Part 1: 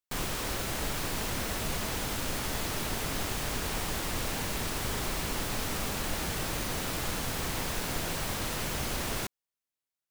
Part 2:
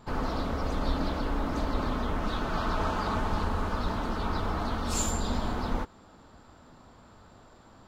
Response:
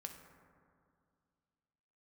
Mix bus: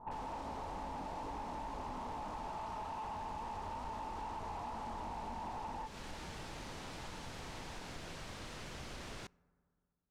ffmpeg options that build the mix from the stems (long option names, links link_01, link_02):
-filter_complex "[0:a]volume=-13dB,asplit=2[link_01][link_02];[link_02]volume=-15.5dB[link_03];[1:a]flanger=delay=18:depth=5.9:speed=2.3,lowpass=frequency=890:width_type=q:width=6.9,alimiter=limit=-22dB:level=0:latency=1,volume=-3.5dB[link_04];[2:a]atrim=start_sample=2205[link_05];[link_03][link_05]afir=irnorm=-1:irlink=0[link_06];[link_01][link_04][link_06]amix=inputs=3:normalize=0,lowpass=6300,asoftclip=type=tanh:threshold=-29.5dB,acompressor=threshold=-41dB:ratio=6"